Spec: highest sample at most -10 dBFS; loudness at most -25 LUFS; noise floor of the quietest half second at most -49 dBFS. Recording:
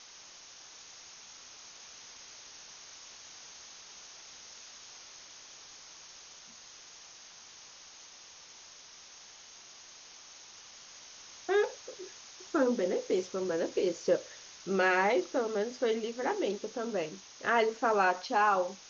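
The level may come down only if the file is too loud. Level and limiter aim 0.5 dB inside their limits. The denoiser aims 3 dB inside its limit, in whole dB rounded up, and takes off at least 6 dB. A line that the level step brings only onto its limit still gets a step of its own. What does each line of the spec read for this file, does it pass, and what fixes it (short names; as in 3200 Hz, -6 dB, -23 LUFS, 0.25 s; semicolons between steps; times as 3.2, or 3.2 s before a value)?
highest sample -15.5 dBFS: OK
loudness -30.5 LUFS: OK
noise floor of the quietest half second -53 dBFS: OK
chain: none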